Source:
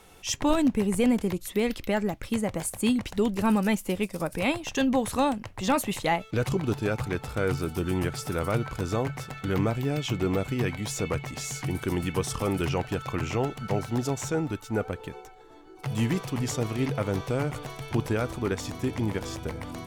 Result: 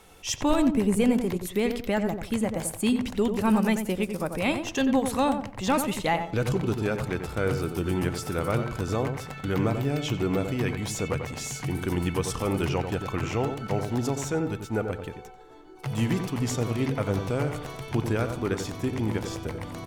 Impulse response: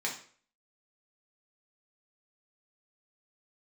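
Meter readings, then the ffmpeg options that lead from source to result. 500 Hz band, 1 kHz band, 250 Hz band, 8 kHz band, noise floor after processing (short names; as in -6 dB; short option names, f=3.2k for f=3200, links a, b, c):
+1.0 dB, +0.5 dB, +1.0 dB, 0.0 dB, -44 dBFS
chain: -filter_complex "[0:a]asplit=2[a][b];[b]adelay=91,lowpass=f=1.5k:p=1,volume=-6.5dB,asplit=2[c][d];[d]adelay=91,lowpass=f=1.5k:p=1,volume=0.3,asplit=2[e][f];[f]adelay=91,lowpass=f=1.5k:p=1,volume=0.3,asplit=2[g][h];[h]adelay=91,lowpass=f=1.5k:p=1,volume=0.3[i];[a][c][e][g][i]amix=inputs=5:normalize=0"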